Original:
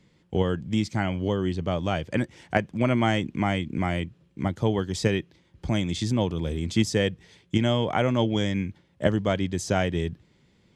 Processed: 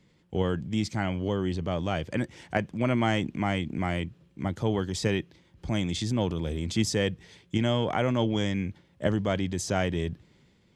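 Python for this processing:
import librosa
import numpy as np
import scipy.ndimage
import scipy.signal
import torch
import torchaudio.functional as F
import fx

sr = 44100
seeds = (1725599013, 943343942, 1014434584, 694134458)

y = fx.transient(x, sr, attack_db=-2, sustain_db=4)
y = F.gain(torch.from_numpy(y), -2.5).numpy()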